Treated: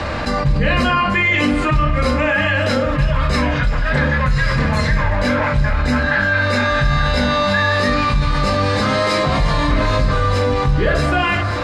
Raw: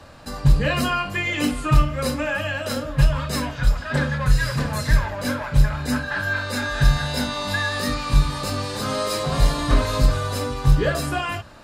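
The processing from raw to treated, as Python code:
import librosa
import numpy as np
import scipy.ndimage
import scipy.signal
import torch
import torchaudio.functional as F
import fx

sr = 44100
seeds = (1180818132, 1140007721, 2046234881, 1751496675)

p1 = scipy.signal.sosfilt(scipy.signal.butter(2, 4900.0, 'lowpass', fs=sr, output='sos'), x)
p2 = fx.peak_eq(p1, sr, hz=2100.0, db=7.5, octaves=0.37)
p3 = p2 + fx.echo_thinned(p2, sr, ms=1171, feedback_pct=65, hz=420.0, wet_db=-18.5, dry=0)
p4 = fx.rev_fdn(p3, sr, rt60_s=0.93, lf_ratio=1.2, hf_ratio=0.25, size_ms=89.0, drr_db=5.0)
p5 = fx.env_flatten(p4, sr, amount_pct=70)
y = F.gain(torch.from_numpy(p5), -2.5).numpy()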